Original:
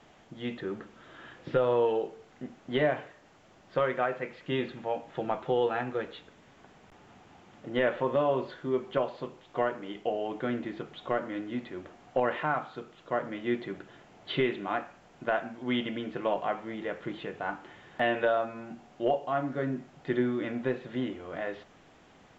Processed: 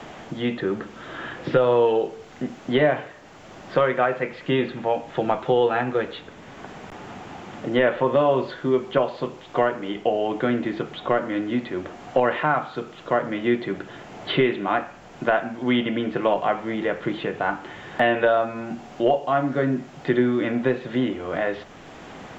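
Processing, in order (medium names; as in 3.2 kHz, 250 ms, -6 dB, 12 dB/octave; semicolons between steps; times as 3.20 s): three bands compressed up and down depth 40%; trim +8.5 dB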